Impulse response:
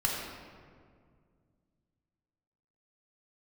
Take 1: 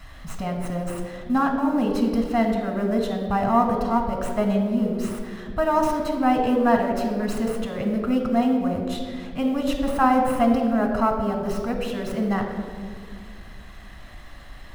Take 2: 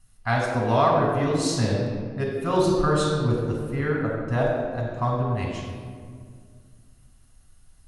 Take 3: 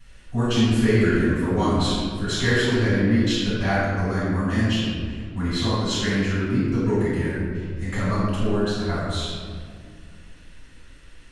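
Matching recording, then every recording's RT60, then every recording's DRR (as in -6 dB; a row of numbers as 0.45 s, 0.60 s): 2; 2.0 s, 2.0 s, 2.0 s; 3.5 dB, -2.0 dB, -11.0 dB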